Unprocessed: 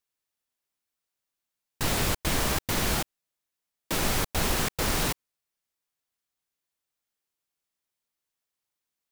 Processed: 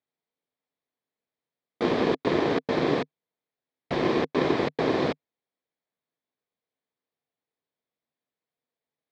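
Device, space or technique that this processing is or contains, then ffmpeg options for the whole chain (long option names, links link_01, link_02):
ring modulator pedal into a guitar cabinet: -af "aeval=exprs='val(0)*sgn(sin(2*PI*350*n/s))':channel_layout=same,highpass=95,equalizer=frequency=150:width_type=q:width=4:gain=6,equalizer=frequency=260:width_type=q:width=4:gain=7,equalizer=frequency=460:width_type=q:width=4:gain=9,equalizer=frequency=670:width_type=q:width=4:gain=4,equalizer=frequency=1400:width_type=q:width=4:gain=-5,equalizer=frequency=2800:width_type=q:width=4:gain=-8,lowpass=frequency=3700:width=0.5412,lowpass=frequency=3700:width=1.3066"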